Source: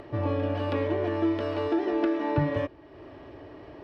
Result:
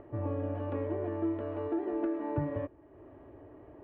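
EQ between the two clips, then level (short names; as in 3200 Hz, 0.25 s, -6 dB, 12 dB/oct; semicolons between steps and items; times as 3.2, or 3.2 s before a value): LPF 1300 Hz 6 dB/oct; air absorption 450 m; bell 160 Hz -4.5 dB 0.36 oct; -5.0 dB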